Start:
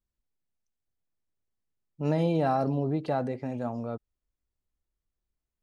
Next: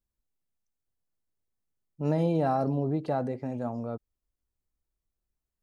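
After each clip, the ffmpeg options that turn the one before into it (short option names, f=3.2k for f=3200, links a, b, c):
-af "equalizer=f=2.9k:w=0.74:g=-5.5"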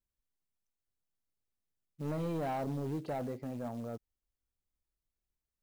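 -af "asoftclip=type=tanh:threshold=-25.5dB,acrusher=bits=6:mode=log:mix=0:aa=0.000001,volume=-5dB"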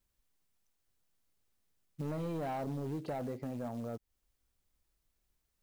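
-af "acompressor=threshold=-49dB:ratio=3,volume=9.5dB"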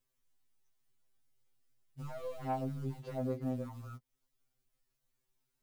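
-af "afftfilt=real='re*2.45*eq(mod(b,6),0)':imag='im*2.45*eq(mod(b,6),0)':win_size=2048:overlap=0.75"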